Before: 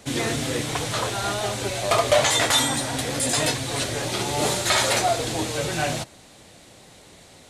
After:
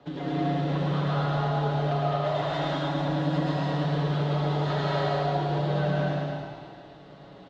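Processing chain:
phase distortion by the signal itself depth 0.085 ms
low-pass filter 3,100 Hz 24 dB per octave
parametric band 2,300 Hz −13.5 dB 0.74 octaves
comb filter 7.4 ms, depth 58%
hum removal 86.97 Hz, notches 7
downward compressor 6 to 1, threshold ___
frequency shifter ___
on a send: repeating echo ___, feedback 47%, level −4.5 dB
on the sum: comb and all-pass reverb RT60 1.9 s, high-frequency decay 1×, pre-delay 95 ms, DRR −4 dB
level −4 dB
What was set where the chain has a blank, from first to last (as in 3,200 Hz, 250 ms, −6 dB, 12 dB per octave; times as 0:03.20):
−28 dBFS, +27 Hz, 109 ms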